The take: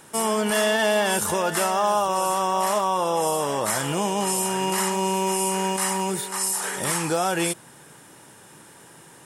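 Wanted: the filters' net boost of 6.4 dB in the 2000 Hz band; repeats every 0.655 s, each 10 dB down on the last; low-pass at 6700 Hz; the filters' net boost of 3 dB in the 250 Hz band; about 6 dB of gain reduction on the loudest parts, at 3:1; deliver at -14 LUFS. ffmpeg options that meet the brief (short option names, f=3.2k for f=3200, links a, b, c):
-af "lowpass=6.7k,equalizer=f=250:t=o:g=4.5,equalizer=f=2k:t=o:g=8,acompressor=threshold=-23dB:ratio=3,aecho=1:1:655|1310|1965|2620:0.316|0.101|0.0324|0.0104,volume=11.5dB"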